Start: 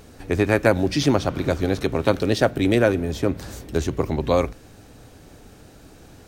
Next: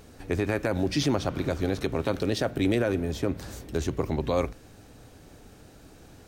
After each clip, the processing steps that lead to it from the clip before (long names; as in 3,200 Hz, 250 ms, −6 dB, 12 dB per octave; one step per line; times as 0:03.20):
brickwall limiter −10.5 dBFS, peak gain reduction 9 dB
level −4 dB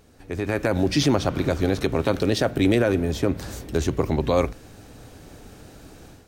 automatic gain control gain up to 11 dB
level −5 dB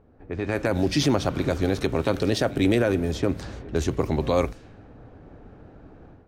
backwards echo 99 ms −21.5 dB
low-pass that shuts in the quiet parts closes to 1,100 Hz, open at −18.5 dBFS
level −1.5 dB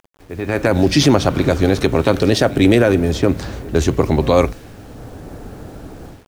automatic gain control gain up to 13 dB
bit reduction 8 bits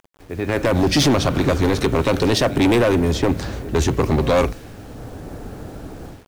hard clipping −12 dBFS, distortion −8 dB